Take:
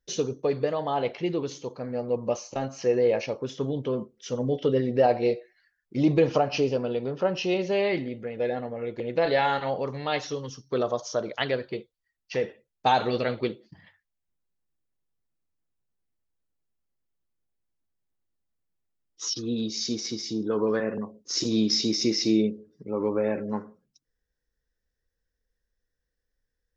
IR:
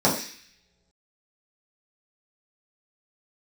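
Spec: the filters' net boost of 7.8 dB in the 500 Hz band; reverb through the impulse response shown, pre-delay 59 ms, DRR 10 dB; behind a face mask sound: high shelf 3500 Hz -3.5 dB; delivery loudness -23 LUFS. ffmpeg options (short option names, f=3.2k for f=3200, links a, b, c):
-filter_complex "[0:a]equalizer=f=500:t=o:g=9,asplit=2[a][b];[1:a]atrim=start_sample=2205,adelay=59[c];[b][c]afir=irnorm=-1:irlink=0,volume=-27.5dB[d];[a][d]amix=inputs=2:normalize=0,highshelf=f=3.5k:g=-3.5,volume=-2.5dB"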